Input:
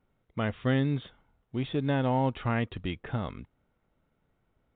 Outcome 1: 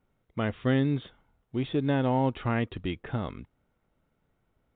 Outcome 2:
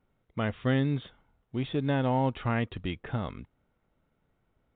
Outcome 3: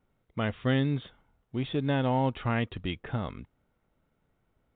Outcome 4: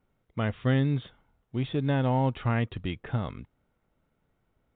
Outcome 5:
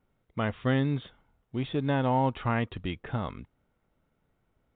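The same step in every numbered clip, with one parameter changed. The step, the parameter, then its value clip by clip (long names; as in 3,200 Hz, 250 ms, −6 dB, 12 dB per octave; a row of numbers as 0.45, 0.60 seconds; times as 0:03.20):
dynamic equaliser, frequency: 340, 8,200, 3,200, 120, 1,000 Hertz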